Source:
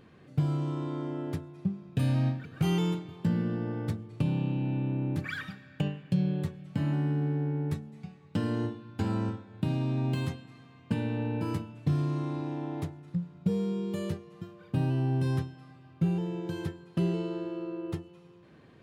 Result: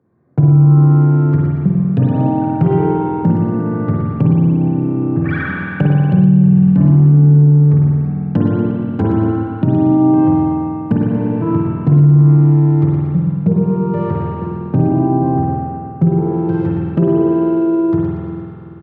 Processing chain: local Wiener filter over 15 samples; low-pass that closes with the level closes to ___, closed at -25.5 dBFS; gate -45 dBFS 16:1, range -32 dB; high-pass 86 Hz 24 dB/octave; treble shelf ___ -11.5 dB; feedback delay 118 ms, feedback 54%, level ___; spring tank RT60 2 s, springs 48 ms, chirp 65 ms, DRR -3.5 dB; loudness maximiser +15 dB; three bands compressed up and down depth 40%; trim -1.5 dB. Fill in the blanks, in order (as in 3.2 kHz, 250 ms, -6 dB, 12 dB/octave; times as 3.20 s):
1 kHz, 2.2 kHz, -7 dB